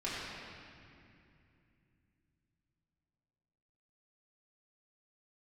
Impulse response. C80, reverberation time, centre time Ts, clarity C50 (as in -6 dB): -1.0 dB, 2.6 s, 0.157 s, -2.5 dB